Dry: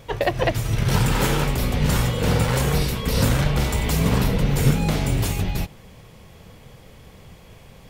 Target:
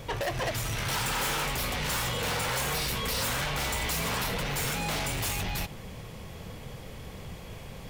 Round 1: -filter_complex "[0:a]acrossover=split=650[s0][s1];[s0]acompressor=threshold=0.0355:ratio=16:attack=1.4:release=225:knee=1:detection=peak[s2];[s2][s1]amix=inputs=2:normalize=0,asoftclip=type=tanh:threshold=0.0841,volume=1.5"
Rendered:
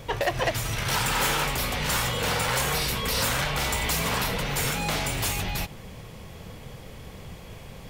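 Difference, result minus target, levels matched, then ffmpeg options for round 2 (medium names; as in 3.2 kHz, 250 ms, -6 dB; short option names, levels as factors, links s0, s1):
saturation: distortion -7 dB
-filter_complex "[0:a]acrossover=split=650[s0][s1];[s0]acompressor=threshold=0.0355:ratio=16:attack=1.4:release=225:knee=1:detection=peak[s2];[s2][s1]amix=inputs=2:normalize=0,asoftclip=type=tanh:threshold=0.0299,volume=1.5"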